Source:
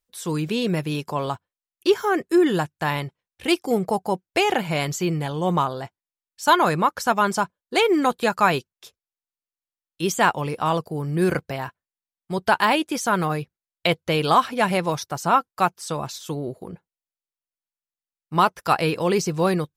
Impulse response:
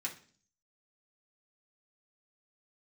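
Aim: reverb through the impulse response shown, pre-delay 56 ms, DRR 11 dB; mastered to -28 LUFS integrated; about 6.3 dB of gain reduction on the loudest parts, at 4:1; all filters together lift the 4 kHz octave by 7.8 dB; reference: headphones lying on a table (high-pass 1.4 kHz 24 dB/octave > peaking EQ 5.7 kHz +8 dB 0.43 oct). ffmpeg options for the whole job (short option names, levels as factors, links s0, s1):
-filter_complex "[0:a]equalizer=f=4000:t=o:g=8.5,acompressor=threshold=0.126:ratio=4,asplit=2[s0][s1];[1:a]atrim=start_sample=2205,adelay=56[s2];[s1][s2]afir=irnorm=-1:irlink=0,volume=0.251[s3];[s0][s3]amix=inputs=2:normalize=0,highpass=f=1400:w=0.5412,highpass=f=1400:w=1.3066,equalizer=f=5700:t=o:w=0.43:g=8,volume=0.891"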